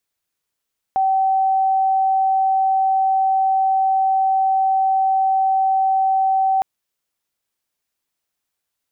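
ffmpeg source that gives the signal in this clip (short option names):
-f lavfi -i "aevalsrc='0.2*sin(2*PI*768*t)':d=5.66:s=44100"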